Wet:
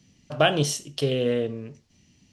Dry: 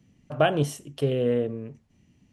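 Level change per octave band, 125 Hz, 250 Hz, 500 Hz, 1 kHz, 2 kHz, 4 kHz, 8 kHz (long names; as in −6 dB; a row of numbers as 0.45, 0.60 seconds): 0.0, 0.0, +0.5, +1.0, +4.0, +9.0, +10.0 decibels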